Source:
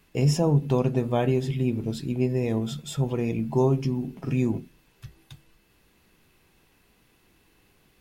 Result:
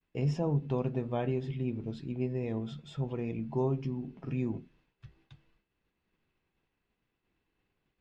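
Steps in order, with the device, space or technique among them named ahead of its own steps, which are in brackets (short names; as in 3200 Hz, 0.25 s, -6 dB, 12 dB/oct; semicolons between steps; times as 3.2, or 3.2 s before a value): hearing-loss simulation (LPF 3400 Hz 12 dB/oct; expander -55 dBFS); gain -8.5 dB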